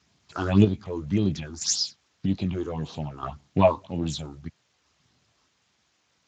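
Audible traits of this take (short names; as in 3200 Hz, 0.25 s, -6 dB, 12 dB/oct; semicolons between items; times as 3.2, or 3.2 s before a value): chopped level 0.62 Hz, depth 60%, duty 40%; phasing stages 6, 1.8 Hz, lowest notch 160–2100 Hz; a quantiser's noise floor 12-bit, dither triangular; Speex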